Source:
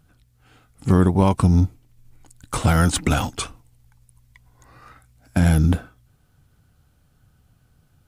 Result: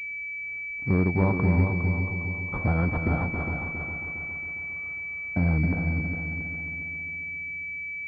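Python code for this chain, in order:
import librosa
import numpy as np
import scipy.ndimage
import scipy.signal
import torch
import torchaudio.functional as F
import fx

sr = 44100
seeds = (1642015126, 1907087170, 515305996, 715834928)

y = fx.echo_heads(x, sr, ms=136, heads='second and third', feedback_pct=53, wet_db=-7)
y = fx.pwm(y, sr, carrier_hz=2300.0)
y = y * librosa.db_to_amplitude(-7.0)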